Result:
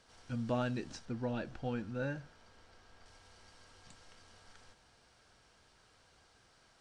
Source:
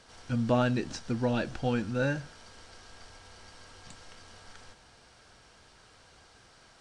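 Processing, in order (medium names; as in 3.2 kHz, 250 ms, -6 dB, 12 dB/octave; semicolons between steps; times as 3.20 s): 1.05–3.06 s: treble shelf 4 kHz -9 dB; trim -8.5 dB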